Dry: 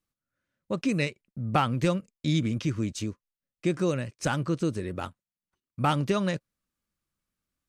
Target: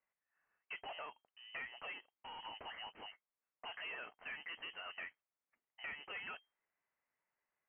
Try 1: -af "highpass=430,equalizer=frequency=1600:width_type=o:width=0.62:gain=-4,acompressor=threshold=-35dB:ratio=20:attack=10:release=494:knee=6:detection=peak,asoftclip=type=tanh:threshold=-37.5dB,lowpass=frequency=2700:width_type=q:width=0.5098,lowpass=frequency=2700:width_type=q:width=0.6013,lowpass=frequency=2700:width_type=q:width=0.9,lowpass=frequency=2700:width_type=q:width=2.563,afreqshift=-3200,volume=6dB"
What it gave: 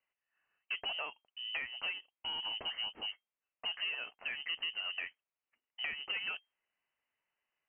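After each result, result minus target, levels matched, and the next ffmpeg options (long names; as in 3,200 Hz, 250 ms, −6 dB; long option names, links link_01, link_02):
500 Hz band −7.5 dB; soft clipping: distortion −7 dB
-af "highpass=1100,equalizer=frequency=1600:width_type=o:width=0.62:gain=-4,acompressor=threshold=-35dB:ratio=20:attack=10:release=494:knee=6:detection=peak,asoftclip=type=tanh:threshold=-37.5dB,lowpass=frequency=2700:width_type=q:width=0.5098,lowpass=frequency=2700:width_type=q:width=0.6013,lowpass=frequency=2700:width_type=q:width=0.9,lowpass=frequency=2700:width_type=q:width=2.563,afreqshift=-3200,volume=6dB"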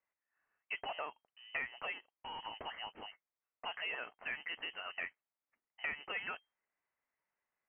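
soft clipping: distortion −6 dB
-af "highpass=1100,equalizer=frequency=1600:width_type=o:width=0.62:gain=-4,acompressor=threshold=-35dB:ratio=20:attack=10:release=494:knee=6:detection=peak,asoftclip=type=tanh:threshold=-47.5dB,lowpass=frequency=2700:width_type=q:width=0.5098,lowpass=frequency=2700:width_type=q:width=0.6013,lowpass=frequency=2700:width_type=q:width=0.9,lowpass=frequency=2700:width_type=q:width=2.563,afreqshift=-3200,volume=6dB"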